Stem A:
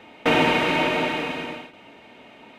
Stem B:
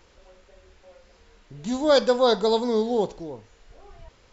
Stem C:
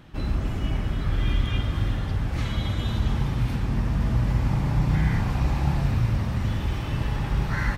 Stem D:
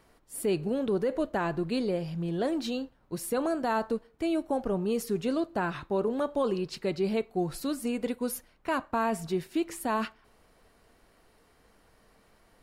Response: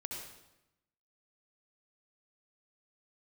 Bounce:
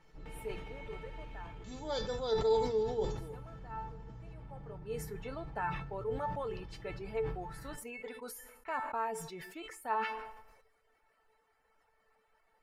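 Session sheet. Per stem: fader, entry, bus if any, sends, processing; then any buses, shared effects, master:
−18.5 dB, 0.00 s, send −6.5 dB, downward compressor, threshold −23 dBFS, peak gain reduction 8.5 dB
−3.5 dB, 0.00 s, no send, mains-hum notches 60/120/180/240/300/360/420 Hz
−8.0 dB, 0.00 s, send −19.5 dB, low-pass filter 1,000 Hz 6 dB per octave; comb filter 6.2 ms; brickwall limiter −19 dBFS, peak gain reduction 9 dB
−3.0 dB, 0.00 s, send −22.5 dB, reverb reduction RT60 1.2 s; flat-topped bell 1,200 Hz +10.5 dB 2.5 octaves; automatic ducking −20 dB, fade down 1.80 s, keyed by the second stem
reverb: on, RT60 0.90 s, pre-delay 60 ms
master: tuned comb filter 440 Hz, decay 0.18 s, harmonics all, mix 90%; level that may fall only so fast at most 54 dB per second

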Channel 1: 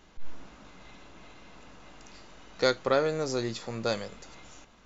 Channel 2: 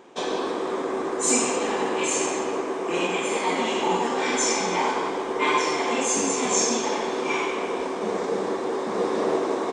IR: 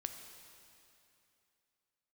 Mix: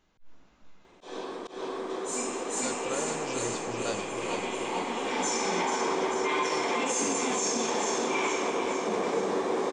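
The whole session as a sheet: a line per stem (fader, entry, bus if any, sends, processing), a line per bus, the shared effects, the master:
−8.0 dB, 0.00 s, no send, echo send −6.5 dB, speech leveller
−3.5 dB, 0.85 s, send −11 dB, echo send −7 dB, automatic ducking −16 dB, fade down 1.60 s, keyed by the first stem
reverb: on, RT60 2.8 s, pre-delay 5 ms
echo: repeating echo 441 ms, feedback 53%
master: volume swells 156 ms; brickwall limiter −19 dBFS, peak gain reduction 7.5 dB

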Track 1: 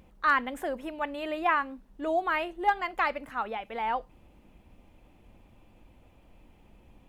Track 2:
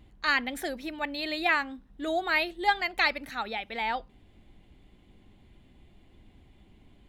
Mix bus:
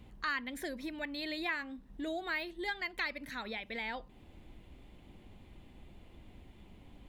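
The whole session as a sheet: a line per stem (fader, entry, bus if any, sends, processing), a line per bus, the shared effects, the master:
−4.0 dB, 0.00 s, no send, no processing
+0.5 dB, 0.00 s, no send, de-essing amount 70%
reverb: not used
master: downward compressor 2 to 1, threshold −42 dBFS, peak gain reduction 13 dB

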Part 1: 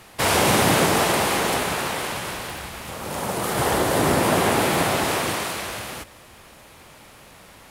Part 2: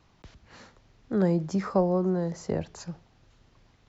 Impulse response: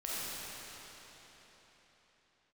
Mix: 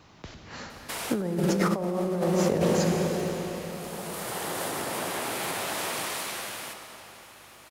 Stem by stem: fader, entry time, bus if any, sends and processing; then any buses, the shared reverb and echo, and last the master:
−12.5 dB, 0.70 s, send −9.5 dB, mains hum 50 Hz, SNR 25 dB; downward compressor, threshold −21 dBFS, peak gain reduction 7 dB; spectral tilt +1.5 dB per octave; automatic ducking −11 dB, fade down 1.75 s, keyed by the second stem
+3.0 dB, 0.00 s, send −3.5 dB, no processing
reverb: on, RT60 4.3 s, pre-delay 5 ms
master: high-pass filter 120 Hz 6 dB per octave; compressor whose output falls as the input rises −25 dBFS, ratio −1

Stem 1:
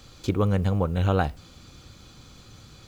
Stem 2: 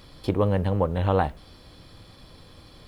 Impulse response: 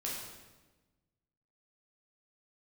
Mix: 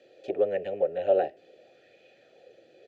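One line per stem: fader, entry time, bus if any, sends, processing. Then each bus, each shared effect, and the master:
+3.0 dB, 0.00 s, no send, formant filter e; high-pass filter 120 Hz 12 dB per octave
−2.5 dB, 2.8 ms, no send, Butterworth high-pass 360 Hz 72 dB per octave; Butterworth low-pass 750 Hz 96 dB per octave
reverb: not used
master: auto-filter bell 0.74 Hz 300–2,600 Hz +7 dB

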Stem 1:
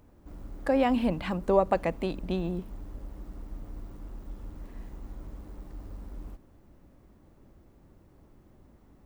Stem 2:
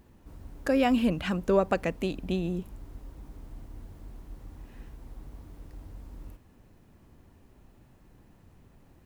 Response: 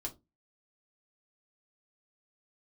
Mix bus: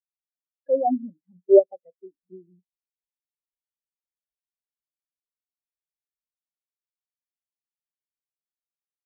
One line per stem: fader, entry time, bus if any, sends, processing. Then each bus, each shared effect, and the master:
+2.5 dB, 0.00 s, send −10.5 dB, no processing
−0.5 dB, 0.00 s, send −11 dB, auto-filter bell 2.5 Hz 370–2,700 Hz +8 dB; automatic ducking −8 dB, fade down 0.90 s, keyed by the first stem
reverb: on, RT60 0.25 s, pre-delay 5 ms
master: low-shelf EQ 99 Hz −11.5 dB; every bin expanded away from the loudest bin 4 to 1

